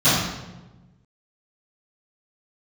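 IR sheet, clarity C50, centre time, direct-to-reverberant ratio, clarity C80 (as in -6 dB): -1.0 dB, 77 ms, -19.0 dB, 2.5 dB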